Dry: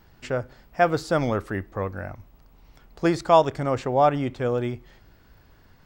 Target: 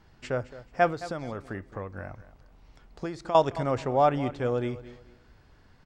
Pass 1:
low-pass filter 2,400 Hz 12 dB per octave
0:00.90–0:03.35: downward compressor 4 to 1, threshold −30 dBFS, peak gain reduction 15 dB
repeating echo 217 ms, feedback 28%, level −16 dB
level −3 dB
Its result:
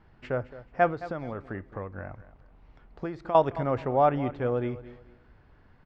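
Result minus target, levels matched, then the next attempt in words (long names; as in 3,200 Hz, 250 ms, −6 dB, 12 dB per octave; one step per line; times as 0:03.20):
8,000 Hz band −18.0 dB
low-pass filter 9,400 Hz 12 dB per octave
0:00.90–0:03.35: downward compressor 4 to 1, threshold −30 dBFS, peak gain reduction 15 dB
repeating echo 217 ms, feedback 28%, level −16 dB
level −3 dB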